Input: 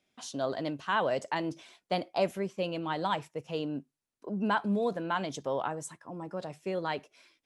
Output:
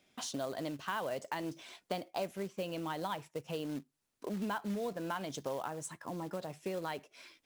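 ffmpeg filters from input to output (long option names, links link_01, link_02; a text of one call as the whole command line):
ffmpeg -i in.wav -af "acrusher=bits=4:mode=log:mix=0:aa=0.000001,acompressor=threshold=-46dB:ratio=3,volume=6.5dB" out.wav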